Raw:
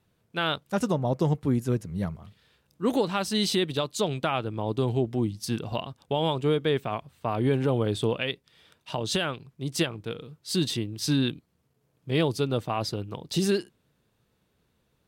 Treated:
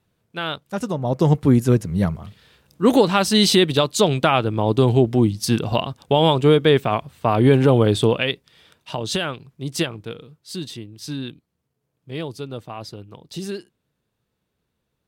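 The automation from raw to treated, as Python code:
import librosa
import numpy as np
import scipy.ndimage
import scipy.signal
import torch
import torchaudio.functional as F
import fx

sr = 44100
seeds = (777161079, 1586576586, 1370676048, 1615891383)

y = fx.gain(x, sr, db=fx.line((0.91, 0.5), (1.36, 10.0), (7.85, 10.0), (8.98, 3.5), (9.95, 3.5), (10.63, -5.0)))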